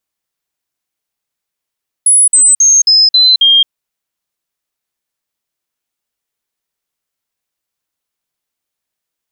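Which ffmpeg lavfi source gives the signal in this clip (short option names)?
-f lavfi -i "aevalsrc='0.631*clip(min(mod(t,0.27),0.22-mod(t,0.27))/0.005,0,1)*sin(2*PI*10200*pow(2,-floor(t/0.27)/3)*mod(t,0.27))':d=1.62:s=44100"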